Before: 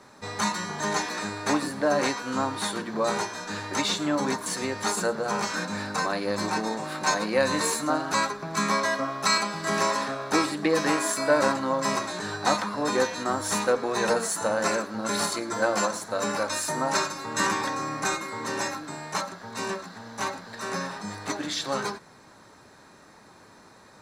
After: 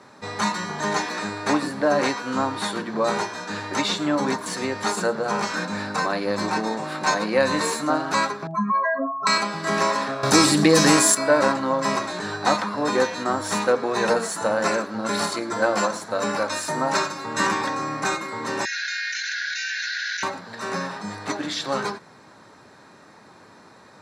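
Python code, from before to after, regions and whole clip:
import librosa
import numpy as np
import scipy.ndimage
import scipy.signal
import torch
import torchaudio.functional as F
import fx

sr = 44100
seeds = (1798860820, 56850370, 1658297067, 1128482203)

y = fx.chain(x, sr, fx.spec_expand(power=3.6),
    fx.doubler(ms=41.0, db=-12.5), at=(8.47, 9.27))
y = fx.chain(y, sr, fx.bass_treble(bass_db=9, treble_db=14),
    fx.env_flatten(amount_pct=50), at=(10.23, 11.15))
y = fx.chain(y, sr, fx.brickwall_bandpass(low_hz=1400.0, high_hz=7100.0),
    fx.env_flatten(amount_pct=100), at=(18.65, 20.23))
y = scipy.signal.sosfilt(scipy.signal.butter(2, 90.0, 'highpass', fs=sr, output='sos'), y)
y = fx.high_shelf(y, sr, hz=9100.0, db=-11.5)
y = fx.notch(y, sr, hz=6300.0, q=28.0)
y = y * 10.0 ** (3.5 / 20.0)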